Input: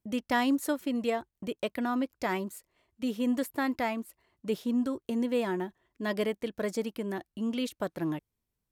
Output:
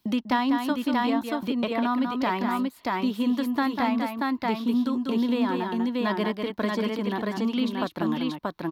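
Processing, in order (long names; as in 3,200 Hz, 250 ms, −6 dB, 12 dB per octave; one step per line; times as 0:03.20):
octave-band graphic EQ 250/500/1,000/4,000/8,000 Hz +7/−4/+11/+10/−10 dB
multi-tap delay 195/632 ms −6.5/−3.5 dB
multiband upward and downward compressor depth 70%
level −2 dB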